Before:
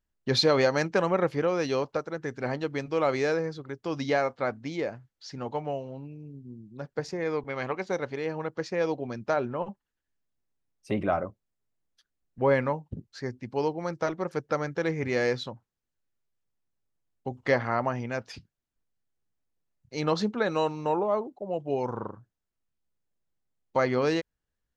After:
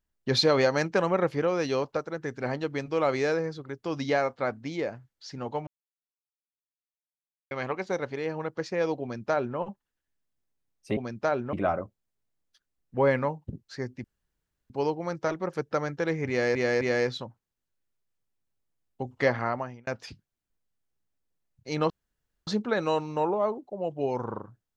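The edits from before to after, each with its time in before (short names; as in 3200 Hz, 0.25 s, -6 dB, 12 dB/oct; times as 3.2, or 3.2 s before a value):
5.67–7.51 mute
9.02–9.58 copy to 10.97
13.48 insert room tone 0.66 s
15.07–15.33 loop, 3 plays
17.67–18.13 fade out
20.16 insert room tone 0.57 s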